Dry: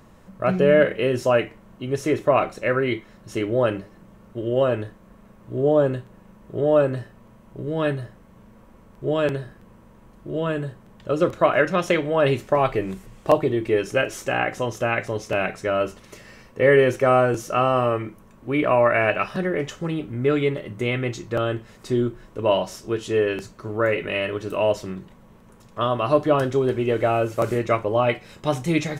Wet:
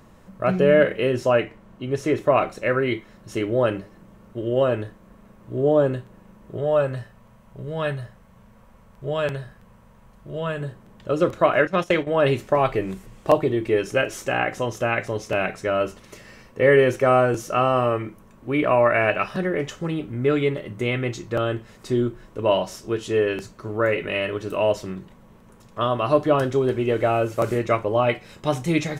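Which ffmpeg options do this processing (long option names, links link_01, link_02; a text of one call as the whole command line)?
ffmpeg -i in.wav -filter_complex "[0:a]asettb=1/sr,asplit=3[link_01][link_02][link_03];[link_01]atrim=end=1.114[link_04];[link_02]atrim=start=1.11:end=2.18,asetpts=PTS-STARTPTS,afade=type=in:duration=0.004:curve=qsin,afade=type=out:start_time=1.066:duration=0.004:curve=qsin,highshelf=frequency=7500:gain=-7[link_05];[link_03]atrim=start=2.176[link_06];[link_04][link_05]acrossfade=duration=0.004:curve1=hsin:curve2=qsin[link_07];[link_07][link_06]acrossfade=duration=0.004:curve1=qsin:curve2=hsin,asettb=1/sr,asplit=3[link_08][link_09][link_10];[link_08]atrim=end=6.574[link_11];[link_09]atrim=start=6.57:end=10.61,asetpts=PTS-STARTPTS,afade=type=in:duration=0.004:curve=qsin,afade=type=out:start_time=4.036:duration=0.004:curve=qsin,equalizer=frequency=320:width_type=o:width=0.77:gain=-11.5[link_12];[link_10]atrim=start=10.606[link_13];[link_11][link_12]acrossfade=duration=0.004:curve1=hsin:curve2=qsin[link_14];[link_14][link_13]acrossfade=duration=0.004:curve1=qsin:curve2=hsin,asettb=1/sr,asplit=3[link_15][link_16][link_17];[link_15]atrim=end=11.674[link_18];[link_16]atrim=start=11.67:end=12.07,asetpts=PTS-STARTPTS,afade=type=in:duration=0.004:curve=qsin,afade=type=out:start_time=0.396:duration=0.004:curve=qsin,agate=range=-12dB:threshold=-27dB:ratio=16:release=100:detection=peak[link_19];[link_17]atrim=start=12.066[link_20];[link_18][link_19]acrossfade=duration=0.004:curve1=hsin:curve2=qsin[link_21];[link_21][link_20]acrossfade=duration=0.004:curve1=qsin:curve2=hsin" out.wav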